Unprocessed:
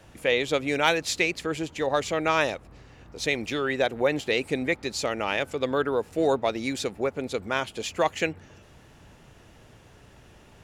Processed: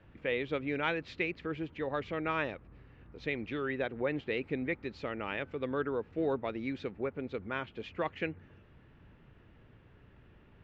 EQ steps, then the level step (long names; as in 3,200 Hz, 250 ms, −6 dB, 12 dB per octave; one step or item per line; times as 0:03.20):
Bessel low-pass filter 2,000 Hz, order 4
parametric band 720 Hz −8 dB 1.1 octaves
−5.0 dB